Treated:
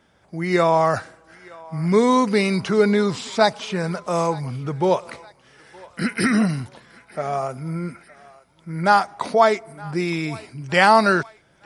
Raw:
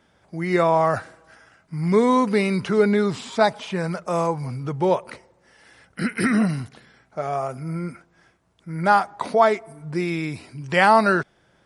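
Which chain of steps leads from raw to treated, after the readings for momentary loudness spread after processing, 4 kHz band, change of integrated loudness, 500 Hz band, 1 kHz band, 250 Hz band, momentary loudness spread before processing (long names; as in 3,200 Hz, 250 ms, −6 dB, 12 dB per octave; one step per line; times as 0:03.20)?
15 LU, +5.0 dB, +1.5 dB, +1.0 dB, +1.0 dB, +1.0 dB, 14 LU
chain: feedback echo with a high-pass in the loop 916 ms, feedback 59%, high-pass 740 Hz, level −20 dB
dynamic equaliser 5,500 Hz, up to +7 dB, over −43 dBFS, Q 0.99
level +1 dB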